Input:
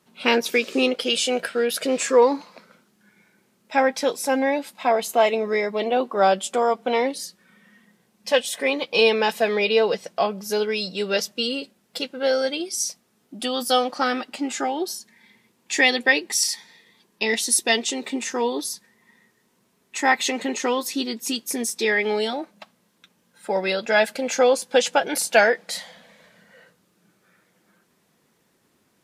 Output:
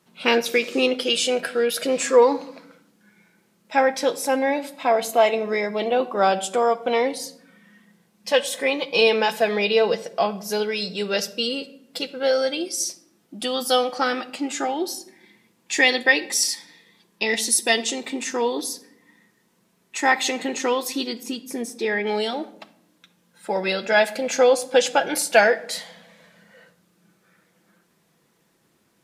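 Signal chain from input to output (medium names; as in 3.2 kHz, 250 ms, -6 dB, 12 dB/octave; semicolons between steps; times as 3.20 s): 21.23–22.07 s: treble shelf 2.1 kHz -10.5 dB; simulated room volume 1900 m³, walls furnished, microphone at 0.72 m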